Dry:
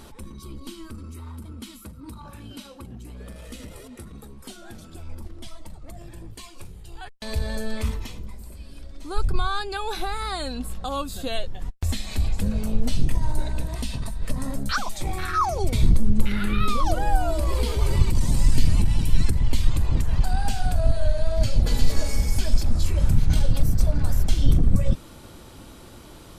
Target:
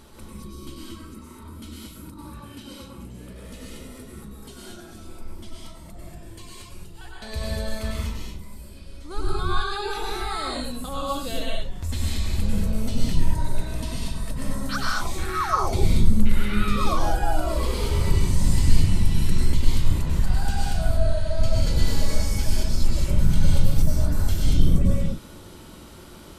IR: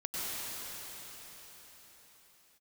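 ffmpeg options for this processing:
-filter_complex "[0:a]bandreject=frequency=750:width=12[link_01];[1:a]atrim=start_sample=2205,afade=type=out:start_time=0.29:duration=0.01,atrim=end_sample=13230[link_02];[link_01][link_02]afir=irnorm=-1:irlink=0,volume=-1dB"

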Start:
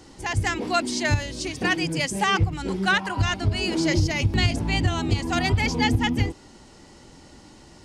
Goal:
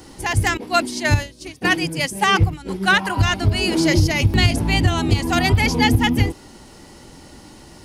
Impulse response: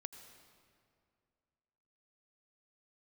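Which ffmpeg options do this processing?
-filter_complex "[0:a]asettb=1/sr,asplit=3[link_01][link_02][link_03];[link_01]atrim=end=0.574[link_04];[link_02]atrim=start=0.57:end=2.93,asetpts=PTS-STARTPTS,afade=type=in:duration=0.004:curve=qsin,afade=type=out:start_time=2.356:duration=0.004:curve=qsin,agate=range=-33dB:threshold=-21dB:ratio=3:detection=peak[link_05];[link_03]atrim=start=2.926[link_06];[link_04][link_05]acrossfade=duration=0.004:curve1=hsin:curve2=qsin[link_07];[link_07][link_06]acrossfade=duration=0.004:curve1=qsin:curve2=hsin,aexciter=amount=5.1:drive=2.7:freq=10000,volume=5.5dB"

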